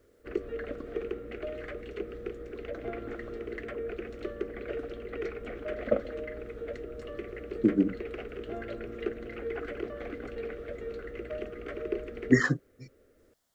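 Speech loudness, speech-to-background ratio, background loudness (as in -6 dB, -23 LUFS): -27.5 LUFS, 10.5 dB, -38.0 LUFS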